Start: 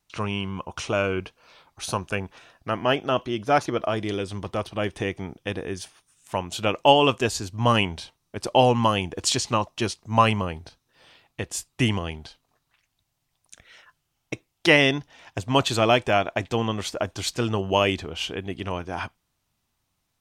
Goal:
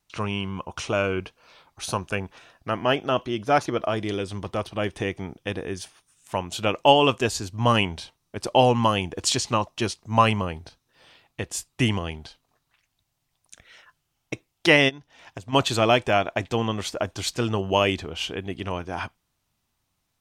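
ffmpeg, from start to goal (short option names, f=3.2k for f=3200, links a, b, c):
-filter_complex "[0:a]asplit=3[a][b][c];[a]afade=t=out:st=14.88:d=0.02[d];[b]acompressor=threshold=-34dB:ratio=8,afade=t=in:st=14.88:d=0.02,afade=t=out:st=15.52:d=0.02[e];[c]afade=t=in:st=15.52:d=0.02[f];[d][e][f]amix=inputs=3:normalize=0"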